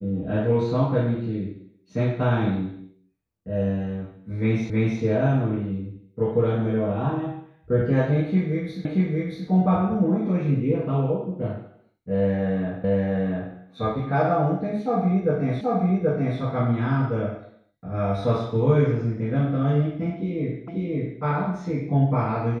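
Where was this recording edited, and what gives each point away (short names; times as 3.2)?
4.7 repeat of the last 0.32 s
8.85 repeat of the last 0.63 s
12.84 repeat of the last 0.69 s
15.61 repeat of the last 0.78 s
20.68 repeat of the last 0.54 s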